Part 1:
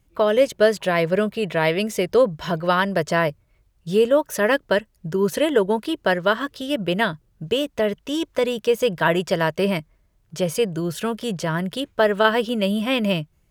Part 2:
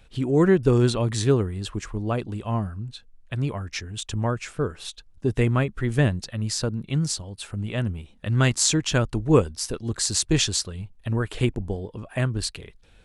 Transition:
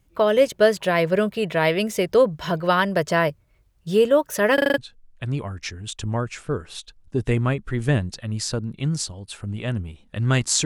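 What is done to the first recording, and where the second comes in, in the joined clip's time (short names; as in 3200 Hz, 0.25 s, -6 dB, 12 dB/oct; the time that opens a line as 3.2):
part 1
4.54 stutter in place 0.04 s, 6 plays
4.78 switch to part 2 from 2.88 s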